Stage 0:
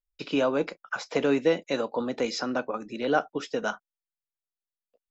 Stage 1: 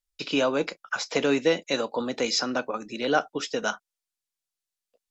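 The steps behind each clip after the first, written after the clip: bell 6700 Hz +9 dB 2.8 oct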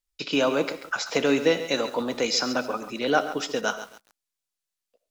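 reverb RT60 0.35 s, pre-delay 35 ms, DRR 14.5 dB; lo-fi delay 0.136 s, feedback 35%, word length 7-bit, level -12 dB; gain +1 dB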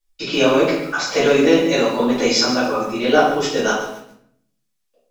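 shoebox room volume 110 m³, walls mixed, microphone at 2.4 m; gain -1.5 dB

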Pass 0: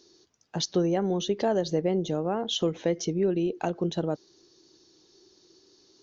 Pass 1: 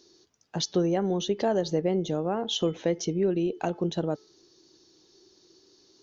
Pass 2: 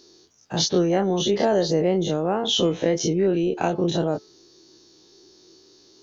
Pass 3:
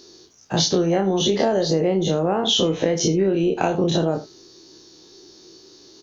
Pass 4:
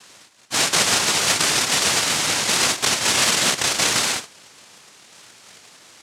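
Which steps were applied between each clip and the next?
de-hum 432.8 Hz, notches 8
spectral dilation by 60 ms; gain +2.5 dB
on a send: early reflections 31 ms -10 dB, 77 ms -17 dB; on the sum: compressor, threshold -21 dBFS, peak gain reduction 7.5 dB; gain +5.5 dB
noise vocoder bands 1

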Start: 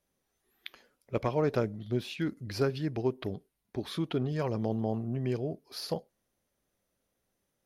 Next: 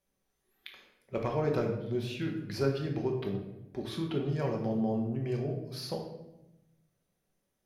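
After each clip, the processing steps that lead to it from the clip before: shoebox room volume 340 m³, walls mixed, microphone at 1.1 m; gain -4 dB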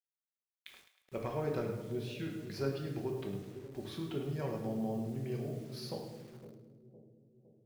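bit-crush 9-bit; split-band echo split 550 Hz, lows 0.51 s, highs 0.105 s, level -12 dB; gain -6 dB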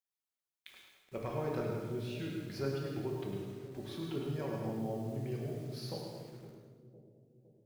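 plate-style reverb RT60 1 s, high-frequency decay 0.9×, pre-delay 85 ms, DRR 3.5 dB; gain -1.5 dB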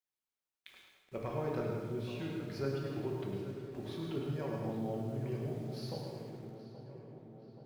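high shelf 5300 Hz -5.5 dB; darkening echo 0.827 s, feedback 68%, low-pass 2800 Hz, level -12.5 dB

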